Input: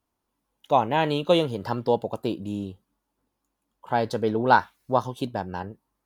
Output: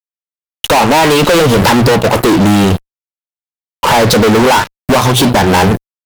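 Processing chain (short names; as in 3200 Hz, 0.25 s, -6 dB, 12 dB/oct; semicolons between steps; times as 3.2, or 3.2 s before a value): HPF 52 Hz 12 dB/oct; low shelf 79 Hz -8 dB; notches 60/120/180 Hz; compressor 8:1, threshold -31 dBFS, peak gain reduction 19 dB; fuzz box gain 54 dB, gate -57 dBFS; gain +6.5 dB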